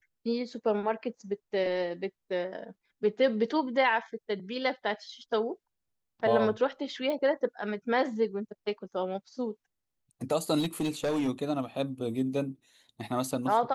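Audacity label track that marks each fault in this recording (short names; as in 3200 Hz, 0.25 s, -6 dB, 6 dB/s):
7.100000	7.100000	pop -22 dBFS
10.590000	11.290000	clipped -25 dBFS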